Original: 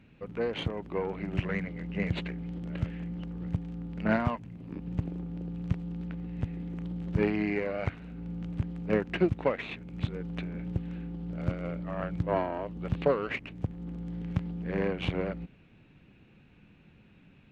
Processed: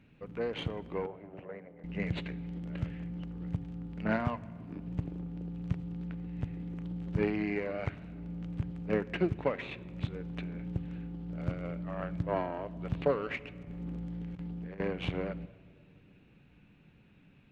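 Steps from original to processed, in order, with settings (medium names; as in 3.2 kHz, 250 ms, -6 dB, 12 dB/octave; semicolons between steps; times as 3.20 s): 1.06–1.84 s: band-pass filter 600 Hz, Q 1.9; 13.63–14.80 s: compressor with a negative ratio -38 dBFS, ratio -1; simulated room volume 3800 m³, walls mixed, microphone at 0.35 m; trim -3.5 dB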